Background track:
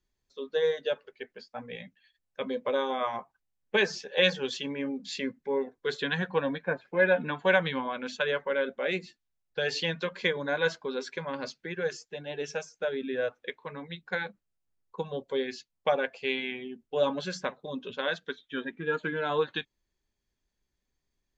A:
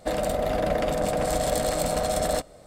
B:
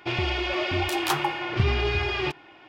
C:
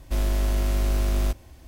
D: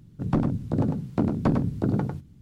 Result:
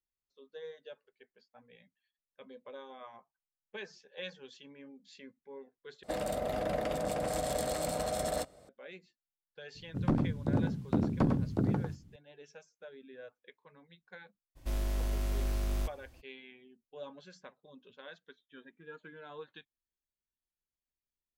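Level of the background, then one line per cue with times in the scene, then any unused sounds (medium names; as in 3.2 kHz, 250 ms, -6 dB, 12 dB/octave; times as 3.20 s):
background track -19 dB
6.03 s: replace with A -8.5 dB + high-pass 55 Hz
9.75 s: add D -5.5 dB
14.55 s: add C -9.5 dB, fades 0.02 s
not used: B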